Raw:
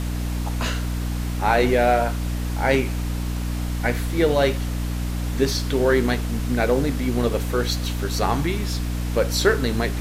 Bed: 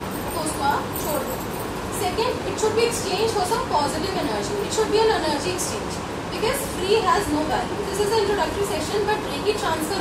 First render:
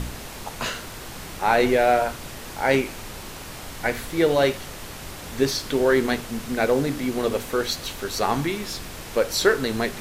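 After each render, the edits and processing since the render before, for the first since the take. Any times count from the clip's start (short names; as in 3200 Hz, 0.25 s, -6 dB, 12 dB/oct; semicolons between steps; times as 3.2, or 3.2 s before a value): de-hum 60 Hz, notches 5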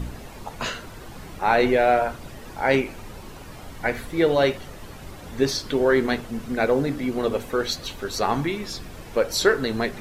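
denoiser 10 dB, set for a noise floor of -38 dBFS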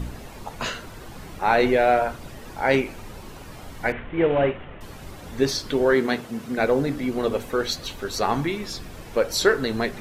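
3.92–4.81 CVSD 16 kbps; 5.94–6.58 HPF 120 Hz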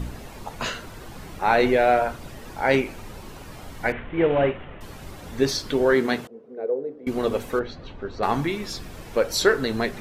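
6.27–7.07 band-pass 450 Hz, Q 5.6; 7.59–8.23 tape spacing loss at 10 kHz 39 dB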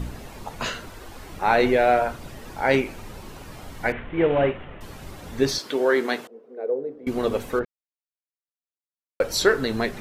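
0.9–1.3 bell 160 Hz -14 dB 0.58 oct; 5.58–6.67 HPF 310 Hz; 7.65–9.2 mute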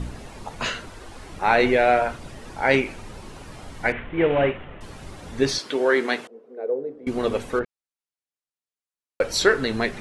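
steep low-pass 11000 Hz 48 dB/oct; dynamic EQ 2300 Hz, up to +4 dB, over -37 dBFS, Q 1.2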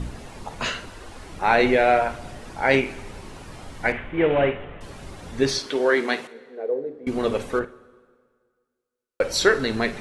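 flutter echo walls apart 8.9 m, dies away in 0.2 s; plate-style reverb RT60 1.8 s, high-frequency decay 0.85×, DRR 19 dB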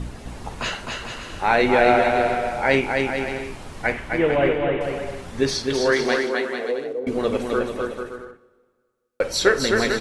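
bouncing-ball echo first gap 0.26 s, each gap 0.7×, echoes 5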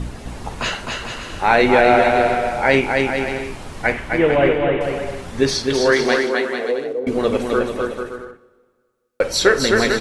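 gain +4 dB; limiter -1 dBFS, peak gain reduction 2 dB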